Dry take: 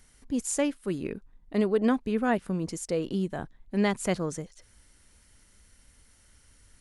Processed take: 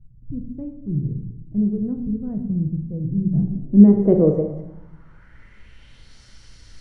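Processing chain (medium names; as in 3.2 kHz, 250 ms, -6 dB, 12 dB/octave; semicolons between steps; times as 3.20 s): peaking EQ 120 Hz +10 dB 0.23 oct; simulated room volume 260 m³, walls mixed, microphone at 0.69 m; low-pass sweep 130 Hz -> 4.8 kHz, 3.17–6.21 s; trim +8 dB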